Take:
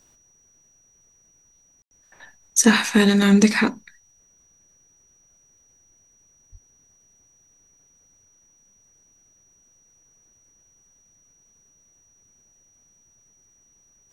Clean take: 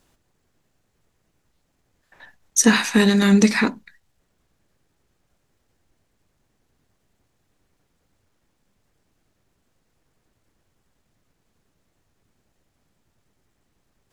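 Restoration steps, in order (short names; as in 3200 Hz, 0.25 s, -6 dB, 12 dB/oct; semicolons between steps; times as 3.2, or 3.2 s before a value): notch 5800 Hz, Q 30; 6.51–6.63 HPF 140 Hz 24 dB/oct; room tone fill 1.82–1.91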